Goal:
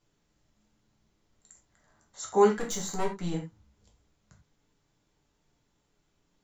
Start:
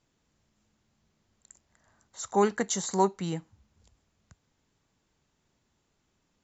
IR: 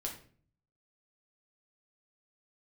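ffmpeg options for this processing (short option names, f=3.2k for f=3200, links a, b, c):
-filter_complex "[0:a]asettb=1/sr,asplit=3[a][b][c];[a]atrim=end=2.534[d];[b]atrim=start=2.53:end=3.34,asetpts=PTS-STARTPTS,afade=t=in:d=0.004:c=qsin,afade=t=out:st=0.806:d=0.004:c=qsin,aeval=exprs='(tanh(20*val(0)+0.3)-tanh(0.3))/20':c=same[e];[c]atrim=start=3.336[f];[d][e]acrossfade=d=0.004:c1=hsin:c2=qsin[g];[g][f]acrossfade=d=0.004:c1=qsin:c2=hsin[h];[1:a]atrim=start_sample=2205,atrim=end_sample=4410[i];[h][i]afir=irnorm=-1:irlink=0"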